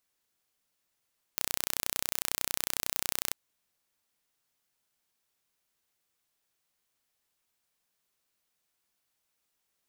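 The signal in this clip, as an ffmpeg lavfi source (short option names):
-f lavfi -i "aevalsrc='0.75*eq(mod(n,1423),0)':d=1.95:s=44100"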